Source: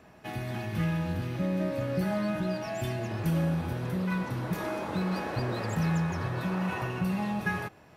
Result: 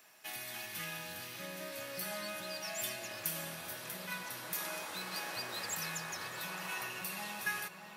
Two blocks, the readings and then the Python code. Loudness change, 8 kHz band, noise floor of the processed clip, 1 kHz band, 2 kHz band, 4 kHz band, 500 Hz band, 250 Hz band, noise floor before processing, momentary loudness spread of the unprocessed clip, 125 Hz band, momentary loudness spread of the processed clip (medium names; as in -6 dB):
-8.5 dB, +9.0 dB, -52 dBFS, -8.0 dB, -3.0 dB, +3.5 dB, -12.5 dB, -21.5 dB, -55 dBFS, 5 LU, -24.0 dB, 5 LU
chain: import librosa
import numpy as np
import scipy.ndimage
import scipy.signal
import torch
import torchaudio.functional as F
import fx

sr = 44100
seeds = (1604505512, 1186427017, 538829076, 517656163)

y = np.diff(x, prepend=0.0)
y = fx.echo_filtered(y, sr, ms=617, feedback_pct=65, hz=3100.0, wet_db=-9.0)
y = y * librosa.db_to_amplitude(8.5)